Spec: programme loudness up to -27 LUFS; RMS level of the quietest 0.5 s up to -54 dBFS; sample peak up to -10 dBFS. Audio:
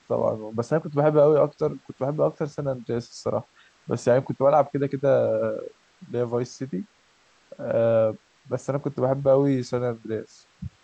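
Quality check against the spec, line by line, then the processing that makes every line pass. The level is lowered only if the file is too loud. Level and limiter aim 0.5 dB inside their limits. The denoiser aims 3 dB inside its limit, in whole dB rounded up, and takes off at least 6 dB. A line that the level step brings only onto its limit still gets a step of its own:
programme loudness -24.5 LUFS: fail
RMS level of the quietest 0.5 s -61 dBFS: OK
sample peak -7.0 dBFS: fail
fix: gain -3 dB; limiter -10.5 dBFS

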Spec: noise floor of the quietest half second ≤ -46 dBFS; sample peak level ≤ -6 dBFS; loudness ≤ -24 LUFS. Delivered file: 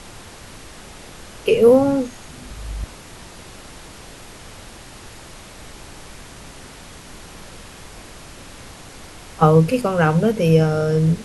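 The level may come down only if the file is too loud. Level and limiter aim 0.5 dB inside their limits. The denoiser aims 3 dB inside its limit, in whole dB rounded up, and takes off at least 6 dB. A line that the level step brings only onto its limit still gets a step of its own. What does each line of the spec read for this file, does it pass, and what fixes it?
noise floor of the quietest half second -40 dBFS: fail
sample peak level -1.5 dBFS: fail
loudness -16.5 LUFS: fail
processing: gain -8 dB

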